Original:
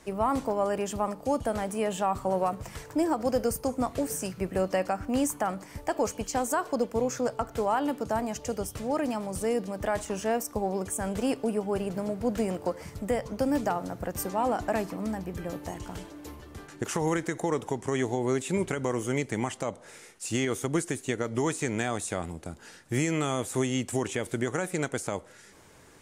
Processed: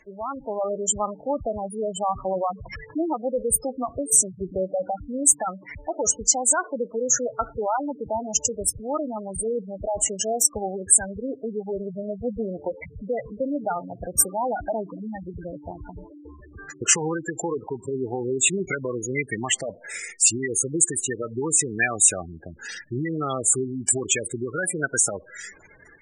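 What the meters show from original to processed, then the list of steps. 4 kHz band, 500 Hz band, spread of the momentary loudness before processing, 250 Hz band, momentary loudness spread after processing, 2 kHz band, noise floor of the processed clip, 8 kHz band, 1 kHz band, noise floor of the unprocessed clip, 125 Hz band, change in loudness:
+6.5 dB, +1.5 dB, 8 LU, -1.0 dB, 16 LU, +5.5 dB, -49 dBFS, +17.0 dB, +1.0 dB, -51 dBFS, -1.5 dB, +6.5 dB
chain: spectral gate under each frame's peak -10 dB strong; graphic EQ 250/500/1000/2000/4000/8000 Hz -6/-4/-8/+11/+7/+12 dB; AGC gain up to 8.5 dB; bell 95 Hz -9 dB 2.5 oct; gain +1 dB

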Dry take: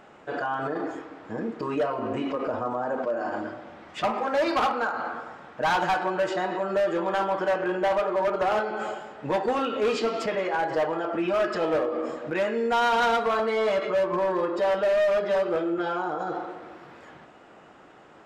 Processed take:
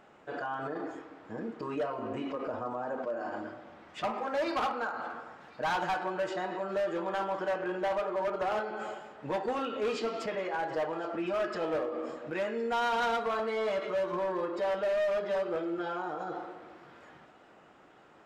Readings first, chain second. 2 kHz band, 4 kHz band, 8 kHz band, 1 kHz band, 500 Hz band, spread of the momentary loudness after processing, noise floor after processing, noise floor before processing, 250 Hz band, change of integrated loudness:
-7.0 dB, -7.0 dB, n/a, -7.0 dB, -7.0 dB, 11 LU, -58 dBFS, -51 dBFS, -7.0 dB, -7.0 dB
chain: thin delay 1.062 s, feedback 46%, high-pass 1600 Hz, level -20 dB; gain -7 dB

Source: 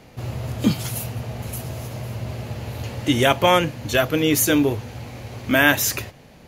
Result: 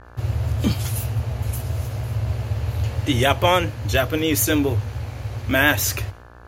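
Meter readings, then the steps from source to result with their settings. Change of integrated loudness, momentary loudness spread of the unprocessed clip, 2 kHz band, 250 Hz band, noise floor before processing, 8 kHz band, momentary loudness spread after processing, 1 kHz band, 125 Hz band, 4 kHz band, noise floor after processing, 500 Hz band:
-0.5 dB, 15 LU, -1.0 dB, -2.5 dB, -47 dBFS, -1.0 dB, 9 LU, -1.0 dB, +5.0 dB, -1.0 dB, -43 dBFS, -1.5 dB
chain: expander -40 dBFS; buzz 60 Hz, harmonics 29, -46 dBFS -1 dB/oct; resonant low shelf 120 Hz +7.5 dB, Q 3; vibrato 7.1 Hz 36 cents; gain -1 dB

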